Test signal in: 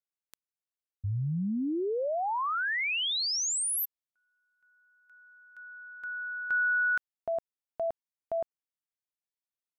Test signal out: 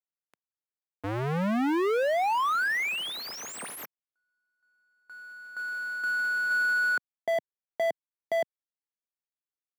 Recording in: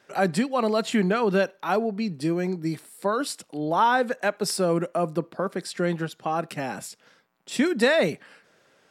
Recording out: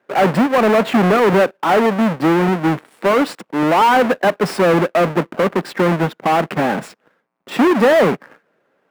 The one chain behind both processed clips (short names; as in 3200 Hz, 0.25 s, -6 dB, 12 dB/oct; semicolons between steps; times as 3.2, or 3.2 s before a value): half-waves squared off; sample leveller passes 3; three-band isolator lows -17 dB, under 150 Hz, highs -17 dB, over 2500 Hz